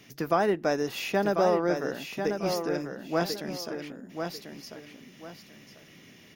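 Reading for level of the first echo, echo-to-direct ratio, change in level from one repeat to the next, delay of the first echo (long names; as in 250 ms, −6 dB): −6.5 dB, −6.0 dB, −11.5 dB, 1,043 ms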